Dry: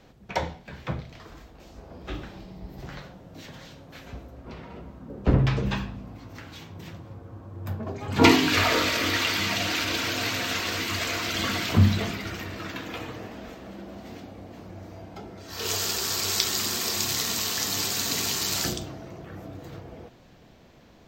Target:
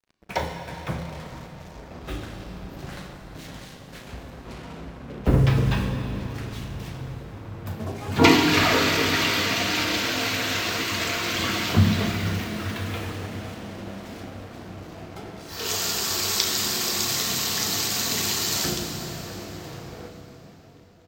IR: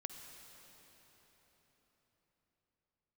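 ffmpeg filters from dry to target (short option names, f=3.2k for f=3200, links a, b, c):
-filter_complex "[0:a]acrusher=bits=6:mix=0:aa=0.5,asplit=2[a][b];[b]adelay=37,volume=-12dB[c];[a][c]amix=inputs=2:normalize=0[d];[1:a]atrim=start_sample=2205[e];[d][e]afir=irnorm=-1:irlink=0,volume=5dB"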